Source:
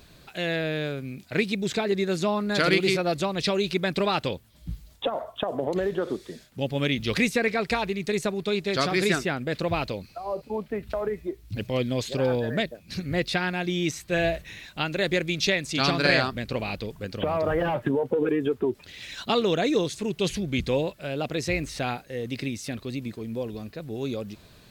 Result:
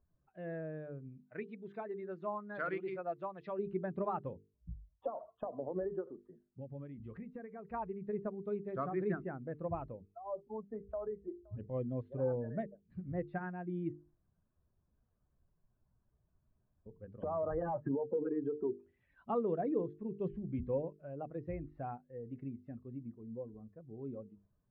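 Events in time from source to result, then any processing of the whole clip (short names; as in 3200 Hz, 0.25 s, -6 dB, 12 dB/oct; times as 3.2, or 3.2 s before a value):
1.25–3.59 tilt +3 dB/oct
6–7.74 compressor, threshold -27 dBFS
10.61–11.42 echo throw 0.52 s, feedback 10%, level -16 dB
13.93–16.86 room tone
whole clip: per-bin expansion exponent 1.5; LPF 1300 Hz 24 dB/oct; notches 50/100/150/200/250/300/350/400/450 Hz; gain -7.5 dB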